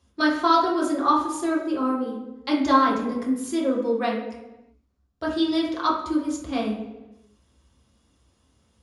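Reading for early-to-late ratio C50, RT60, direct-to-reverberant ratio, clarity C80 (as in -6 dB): 4.0 dB, 1.1 s, -5.5 dB, 7.5 dB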